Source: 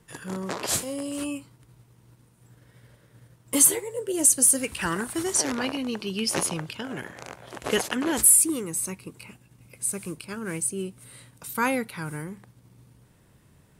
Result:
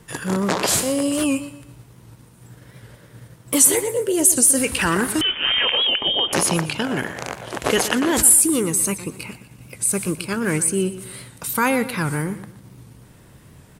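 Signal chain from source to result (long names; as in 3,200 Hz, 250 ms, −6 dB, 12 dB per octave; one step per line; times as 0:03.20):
in parallel at −0.5 dB: compressor whose output falls as the input rises −30 dBFS, ratio −1
on the sum: repeating echo 121 ms, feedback 37%, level −14 dB
0:05.21–0:06.33: voice inversion scrambler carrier 3,400 Hz
wow of a warped record 78 rpm, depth 100 cents
level +3 dB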